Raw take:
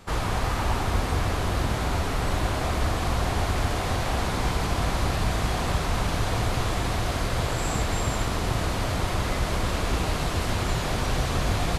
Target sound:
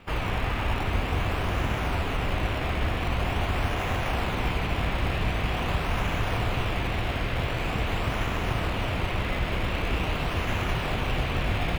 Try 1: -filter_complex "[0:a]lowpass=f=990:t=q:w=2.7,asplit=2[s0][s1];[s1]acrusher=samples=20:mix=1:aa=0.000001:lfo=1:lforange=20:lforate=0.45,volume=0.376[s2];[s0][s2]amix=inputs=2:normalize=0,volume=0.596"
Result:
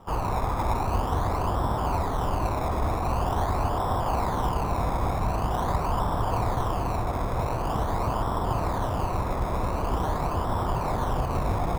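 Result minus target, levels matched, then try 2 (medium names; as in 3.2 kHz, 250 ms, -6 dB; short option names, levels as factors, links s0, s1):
2 kHz band -10.5 dB
-filter_complex "[0:a]lowpass=f=2700:t=q:w=2.7,asplit=2[s0][s1];[s1]acrusher=samples=20:mix=1:aa=0.000001:lfo=1:lforange=20:lforate=0.45,volume=0.376[s2];[s0][s2]amix=inputs=2:normalize=0,volume=0.596"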